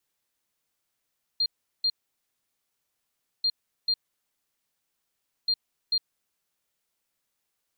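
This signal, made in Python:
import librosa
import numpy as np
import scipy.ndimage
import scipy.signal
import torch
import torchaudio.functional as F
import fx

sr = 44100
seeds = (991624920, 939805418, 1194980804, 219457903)

y = fx.beep_pattern(sr, wave='sine', hz=4200.0, on_s=0.06, off_s=0.38, beeps=2, pause_s=1.54, groups=3, level_db=-21.0)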